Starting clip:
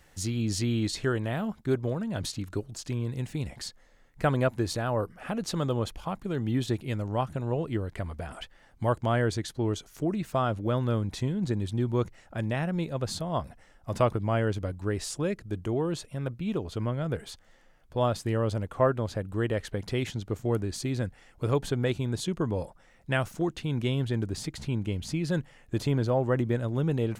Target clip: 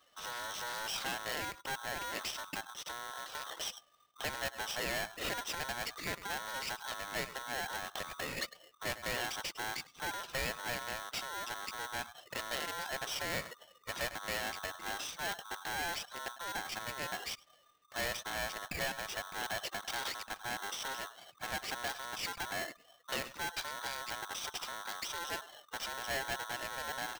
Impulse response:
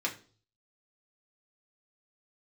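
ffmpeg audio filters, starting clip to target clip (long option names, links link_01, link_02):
-filter_complex "[0:a]acompressor=threshold=-29dB:ratio=5,asplit=2[link_01][link_02];[link_02]aecho=0:1:103:0.0794[link_03];[link_01][link_03]amix=inputs=2:normalize=0,aeval=exprs='(tanh(79.4*val(0)+0.25)-tanh(0.25))/79.4':channel_layout=same,acrossover=split=3200[link_04][link_05];[link_05]acompressor=threshold=-52dB:ratio=4:attack=1:release=60[link_06];[link_04][link_06]amix=inputs=2:normalize=0,asplit=2[link_07][link_08];[link_08]aeval=exprs='val(0)*gte(abs(val(0)),0.00282)':channel_layout=same,volume=-10dB[link_09];[link_07][link_09]amix=inputs=2:normalize=0,aresample=11025,aresample=44100,aemphasis=mode=production:type=75kf,afftdn=noise_reduction=16:noise_floor=-51,bass=frequency=250:gain=-14,treble=frequency=4000:gain=0,aeval=exprs='val(0)*sgn(sin(2*PI*1200*n/s))':channel_layout=same,volume=4dB"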